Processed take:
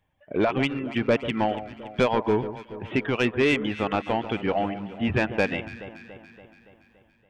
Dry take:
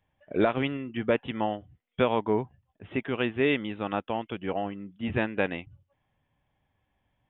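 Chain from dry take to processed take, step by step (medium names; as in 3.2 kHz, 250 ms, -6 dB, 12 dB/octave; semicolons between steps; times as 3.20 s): level rider gain up to 7 dB; reverb removal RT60 0.51 s; in parallel at -1.5 dB: compression, threshold -26 dBFS, peak gain reduction 13.5 dB; on the sum: dynamic bell 2.4 kHz, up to +4 dB, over -38 dBFS, Q 5; saturation -10.5 dBFS, distortion -15 dB; on a send: echo whose repeats swap between lows and highs 142 ms, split 1.4 kHz, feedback 75%, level -12 dB; on the sum: trim -3 dB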